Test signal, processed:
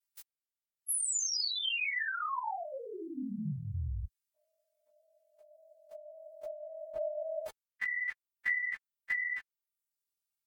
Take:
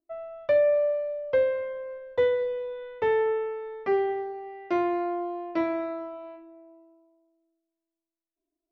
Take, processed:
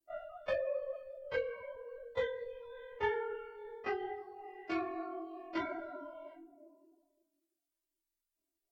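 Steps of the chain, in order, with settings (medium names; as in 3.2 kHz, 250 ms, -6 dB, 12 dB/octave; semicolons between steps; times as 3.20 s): partials quantised in pitch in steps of 2 st; bass shelf 99 Hz +7.5 dB; ring modulator 21 Hz; dynamic bell 460 Hz, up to -7 dB, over -41 dBFS, Q 0.86; compression, threshold -29 dBFS; reverb removal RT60 0.91 s; three-phase chorus; trim +3 dB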